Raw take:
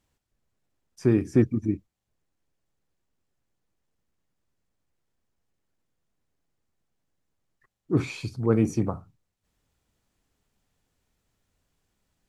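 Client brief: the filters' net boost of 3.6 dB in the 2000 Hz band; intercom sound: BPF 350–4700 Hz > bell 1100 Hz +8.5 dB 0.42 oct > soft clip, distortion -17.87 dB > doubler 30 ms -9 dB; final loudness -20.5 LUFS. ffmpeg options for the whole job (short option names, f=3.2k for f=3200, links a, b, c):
-filter_complex "[0:a]highpass=350,lowpass=4.7k,equalizer=f=1.1k:t=o:w=0.42:g=8.5,equalizer=f=2k:t=o:g=4,asoftclip=threshold=-17dB,asplit=2[a][b];[b]adelay=30,volume=-9dB[c];[a][c]amix=inputs=2:normalize=0,volume=10.5dB"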